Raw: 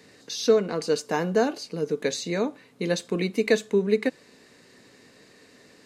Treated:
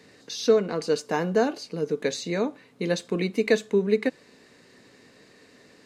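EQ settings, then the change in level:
high-shelf EQ 6,600 Hz −5 dB
0.0 dB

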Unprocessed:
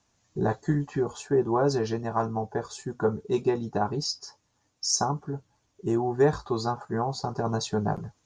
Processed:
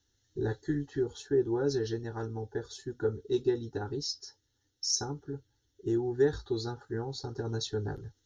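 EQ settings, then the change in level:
phaser with its sweep stopped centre 450 Hz, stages 4
phaser with its sweep stopped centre 2,400 Hz, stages 6
notch filter 4,800 Hz, Q 6.6
+2.0 dB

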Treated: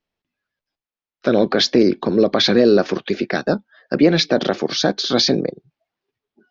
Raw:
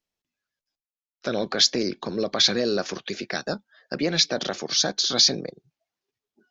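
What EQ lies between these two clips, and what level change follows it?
high-frequency loss of the air 200 metres
dynamic equaliser 310 Hz, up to +6 dB, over −39 dBFS, Q 0.76
+7.5 dB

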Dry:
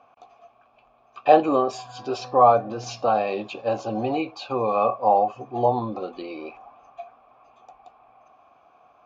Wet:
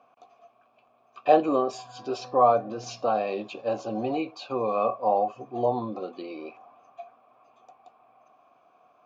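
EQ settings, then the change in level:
high-pass filter 140 Hz 12 dB per octave
parametric band 1,900 Hz −3 dB 2.8 octaves
notch filter 830 Hz, Q 12
−2.0 dB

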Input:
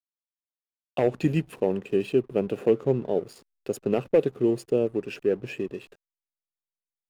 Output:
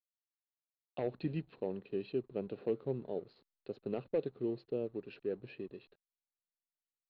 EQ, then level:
transistor ladder low-pass 4,300 Hz, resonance 85%
high-frequency loss of the air 220 metres
high-shelf EQ 3,200 Hz −9 dB
0.0 dB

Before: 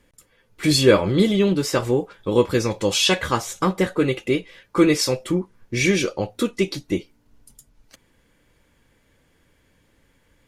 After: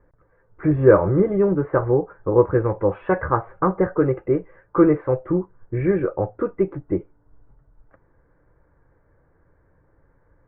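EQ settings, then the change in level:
Butterworth low-pass 1,600 Hz 36 dB per octave
high-frequency loss of the air 370 metres
parametric band 230 Hz −14.5 dB 0.4 octaves
+4.0 dB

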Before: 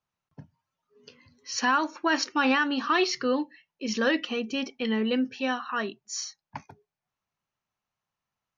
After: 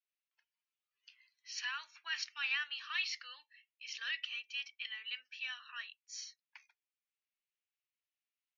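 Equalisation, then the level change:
four-pole ladder high-pass 1,900 Hz, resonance 35%
high-frequency loss of the air 100 metres
0.0 dB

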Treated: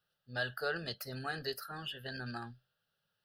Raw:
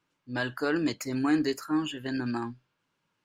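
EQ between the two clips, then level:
high-shelf EQ 5,000 Hz +9.5 dB
phaser with its sweep stopped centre 1,500 Hz, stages 8
−4.0 dB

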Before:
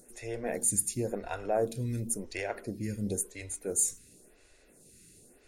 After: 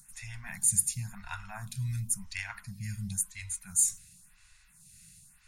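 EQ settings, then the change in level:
elliptic band-stop filter 170–1,000 Hz, stop band 50 dB
+2.5 dB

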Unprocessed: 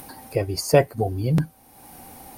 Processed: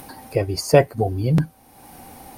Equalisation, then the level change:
high-shelf EQ 8,300 Hz −5.5 dB
+2.5 dB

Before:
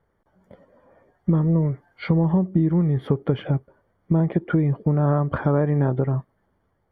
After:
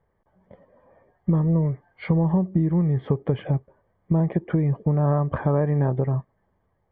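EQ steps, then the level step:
low-pass filter 2,500 Hz 12 dB per octave
parametric band 290 Hz −4.5 dB 0.83 octaves
notch filter 1,400 Hz, Q 5.3
0.0 dB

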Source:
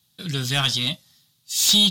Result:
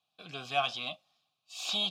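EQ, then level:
formant filter a
+5.0 dB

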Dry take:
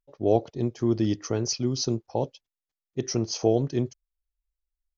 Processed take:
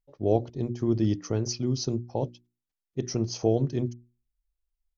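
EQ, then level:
low-shelf EQ 270 Hz +8.5 dB
mains-hum notches 60/120/180/240/300/360 Hz
−4.5 dB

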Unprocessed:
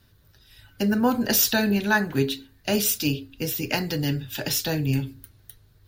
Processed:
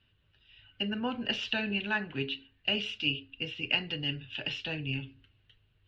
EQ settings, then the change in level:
transistor ladder low-pass 3,000 Hz, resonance 80%
0.0 dB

